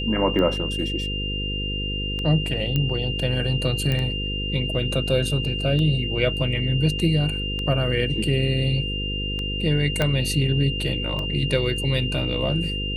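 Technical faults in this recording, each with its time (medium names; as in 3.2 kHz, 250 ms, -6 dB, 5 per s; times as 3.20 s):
buzz 50 Hz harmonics 10 -29 dBFS
tick 33 1/3 rpm -17 dBFS
whine 2.8 kHz -28 dBFS
2.76 s: pop -11 dBFS
3.92 s: pop -12 dBFS
10.02 s: pop -8 dBFS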